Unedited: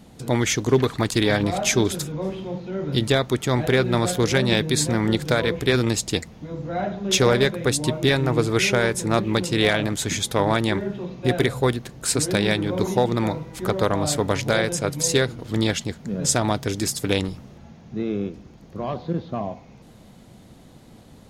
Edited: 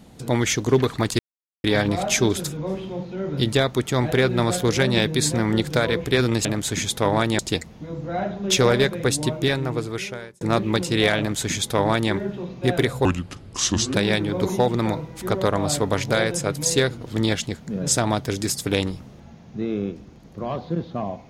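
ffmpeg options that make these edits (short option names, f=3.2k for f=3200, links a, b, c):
-filter_complex "[0:a]asplit=7[a][b][c][d][e][f][g];[a]atrim=end=1.19,asetpts=PTS-STARTPTS,afade=t=out:st=1.186:d=0.004:c=hsin,apad=pad_dur=0.45[h];[b]atrim=start=1.19:end=6.002,asetpts=PTS-STARTPTS,afade=t=in:d=0.004:c=hsin[i];[c]atrim=start=9.788:end=10.732[j];[d]atrim=start=5.998:end=9.02,asetpts=PTS-STARTPTS,afade=t=out:st=1.812:d=1.21[k];[e]atrim=start=9.02:end=11.664,asetpts=PTS-STARTPTS,afade=t=in:d=0.004:c=hsin[l];[f]atrim=start=11.66:end=12.32,asetpts=PTS-STARTPTS,asetrate=32634,aresample=44100,atrim=end_sample=39332,asetpts=PTS-STARTPTS[m];[g]atrim=start=12.316[n];[h][i]concat=n=2:v=0:a=1[o];[o][j]acrossfade=d=0.004:c1=hsin:c2=hsin[p];[k][l]concat=n=2:v=0:a=1[q];[p][q]acrossfade=d=0.004:c1=hsin:c2=hsin[r];[r][m]acrossfade=d=0.004:c1=hsin:c2=hsin[s];[s][n]acrossfade=d=0.004:c1=hsin:c2=hsin"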